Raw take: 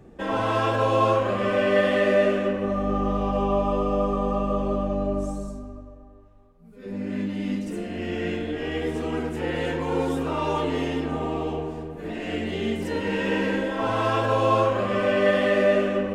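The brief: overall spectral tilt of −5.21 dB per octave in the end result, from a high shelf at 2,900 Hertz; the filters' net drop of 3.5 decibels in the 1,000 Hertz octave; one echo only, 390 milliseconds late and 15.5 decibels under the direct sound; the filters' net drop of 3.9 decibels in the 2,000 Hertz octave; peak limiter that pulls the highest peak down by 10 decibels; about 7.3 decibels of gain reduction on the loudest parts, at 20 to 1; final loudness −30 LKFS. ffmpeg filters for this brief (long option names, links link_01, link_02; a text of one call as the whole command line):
ffmpeg -i in.wav -af "equalizer=frequency=1000:width_type=o:gain=-3.5,equalizer=frequency=2000:width_type=o:gain=-6.5,highshelf=frequency=2900:gain=7,acompressor=threshold=-24dB:ratio=20,alimiter=level_in=2.5dB:limit=-24dB:level=0:latency=1,volume=-2.5dB,aecho=1:1:390:0.168,volume=5dB" out.wav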